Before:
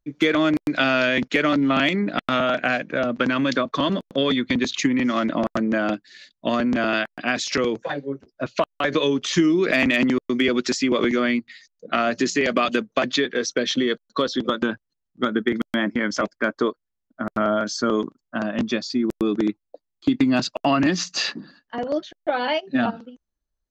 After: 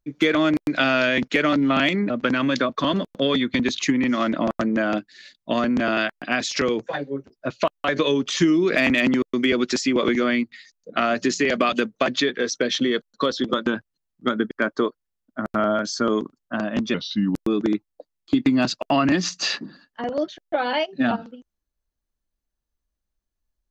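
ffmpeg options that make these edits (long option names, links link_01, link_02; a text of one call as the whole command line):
ffmpeg -i in.wav -filter_complex "[0:a]asplit=5[link_01][link_02][link_03][link_04][link_05];[link_01]atrim=end=2.102[link_06];[link_02]atrim=start=3.058:end=15.472[link_07];[link_03]atrim=start=16.328:end=18.764[link_08];[link_04]atrim=start=18.76:end=19.13,asetpts=PTS-STARTPTS,asetrate=36603,aresample=44100,atrim=end_sample=19659,asetpts=PTS-STARTPTS[link_09];[link_05]atrim=start=19.126[link_10];[link_06][link_07]acrossfade=duration=0.004:curve1=hsin:curve2=hsin[link_11];[link_11][link_08]acrossfade=duration=0.004:curve1=hsin:curve2=hsin[link_12];[link_12][link_09]acrossfade=duration=0.004:curve1=hsin:curve2=hsin[link_13];[link_13][link_10]acrossfade=duration=0.004:curve1=hsin:curve2=hsin" out.wav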